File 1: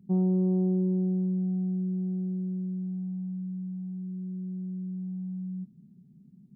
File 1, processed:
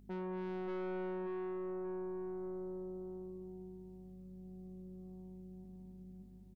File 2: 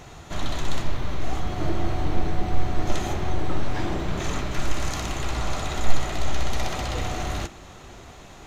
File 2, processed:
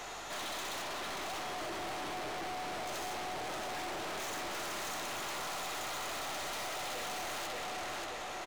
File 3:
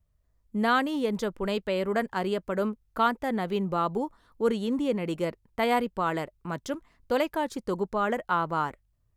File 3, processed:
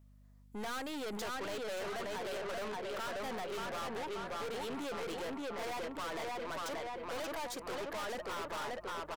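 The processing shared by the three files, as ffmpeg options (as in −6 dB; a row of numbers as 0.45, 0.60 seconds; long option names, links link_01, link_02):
-filter_complex "[0:a]highpass=520,alimiter=limit=-20dB:level=0:latency=1:release=278,asplit=2[link_01][link_02];[link_02]adelay=582,lowpass=frequency=4100:poles=1,volume=-3.5dB,asplit=2[link_03][link_04];[link_04]adelay=582,lowpass=frequency=4100:poles=1,volume=0.44,asplit=2[link_05][link_06];[link_06]adelay=582,lowpass=frequency=4100:poles=1,volume=0.44,asplit=2[link_07][link_08];[link_08]adelay=582,lowpass=frequency=4100:poles=1,volume=0.44,asplit=2[link_09][link_10];[link_10]adelay=582,lowpass=frequency=4100:poles=1,volume=0.44,asplit=2[link_11][link_12];[link_12]adelay=582,lowpass=frequency=4100:poles=1,volume=0.44[link_13];[link_03][link_05][link_07][link_09][link_11][link_13]amix=inputs=6:normalize=0[link_14];[link_01][link_14]amix=inputs=2:normalize=0,aeval=exprs='val(0)+0.000562*(sin(2*PI*50*n/s)+sin(2*PI*2*50*n/s)/2+sin(2*PI*3*50*n/s)/3+sin(2*PI*4*50*n/s)/4+sin(2*PI*5*50*n/s)/5)':channel_layout=same,aeval=exprs='(tanh(178*val(0)+0.25)-tanh(0.25))/178':channel_layout=same,volume=6.5dB"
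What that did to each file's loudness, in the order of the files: −13.5, −8.5, −11.0 LU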